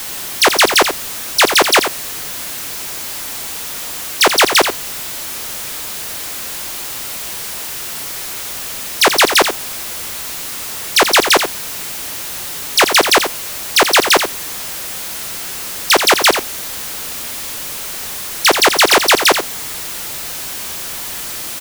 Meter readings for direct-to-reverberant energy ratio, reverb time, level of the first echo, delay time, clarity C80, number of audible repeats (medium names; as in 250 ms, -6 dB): no reverb, no reverb, -8.5 dB, 85 ms, no reverb, 1